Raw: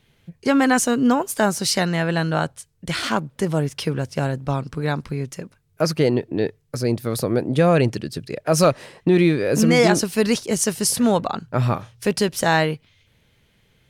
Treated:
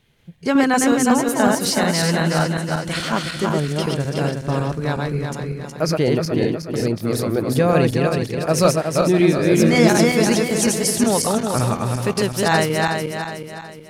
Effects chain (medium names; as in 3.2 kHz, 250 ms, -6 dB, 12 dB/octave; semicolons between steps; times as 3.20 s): backward echo that repeats 184 ms, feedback 66%, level -2 dB; trim -1 dB